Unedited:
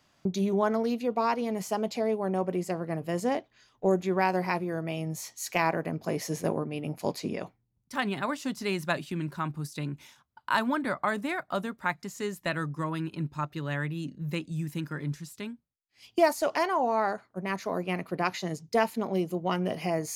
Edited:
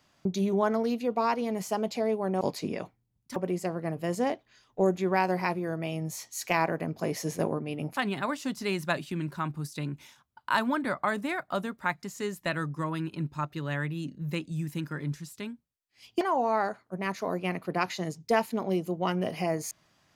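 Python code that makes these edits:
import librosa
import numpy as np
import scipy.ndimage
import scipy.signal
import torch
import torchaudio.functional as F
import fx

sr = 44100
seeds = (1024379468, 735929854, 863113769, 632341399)

y = fx.edit(x, sr, fx.move(start_s=7.02, length_s=0.95, to_s=2.41),
    fx.cut(start_s=16.21, length_s=0.44), tone=tone)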